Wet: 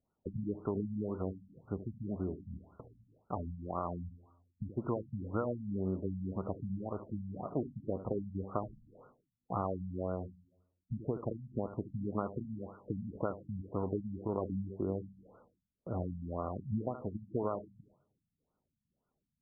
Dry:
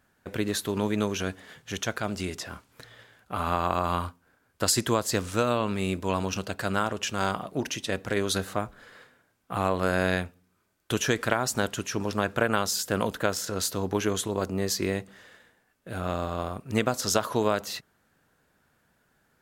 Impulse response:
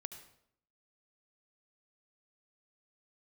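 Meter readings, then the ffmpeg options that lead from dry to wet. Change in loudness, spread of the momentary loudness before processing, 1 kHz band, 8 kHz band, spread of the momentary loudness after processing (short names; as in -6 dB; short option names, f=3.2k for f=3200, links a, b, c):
-11.0 dB, 9 LU, -13.5 dB, under -40 dB, 8 LU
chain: -filter_complex "[0:a]acompressor=threshold=-30dB:ratio=6,agate=range=-14dB:threshold=-57dB:ratio=16:detection=peak,lowpass=2.1k,asplit=2[a][b];[1:a]atrim=start_sample=2205,adelay=74[c];[b][c]afir=irnorm=-1:irlink=0,volume=-9dB[d];[a][d]amix=inputs=2:normalize=0,afftfilt=real='re*lt(b*sr/1024,230*pow(1500/230,0.5+0.5*sin(2*PI*1.9*pts/sr)))':imag='im*lt(b*sr/1024,230*pow(1500/230,0.5+0.5*sin(2*PI*1.9*pts/sr)))':win_size=1024:overlap=0.75"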